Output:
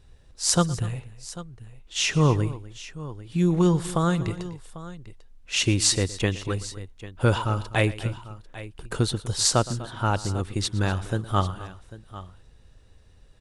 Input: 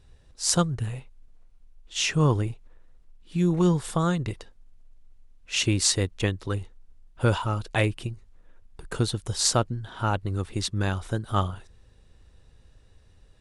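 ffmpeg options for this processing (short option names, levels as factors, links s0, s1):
-af "aecho=1:1:116|248|795:0.112|0.126|0.15,volume=1.19"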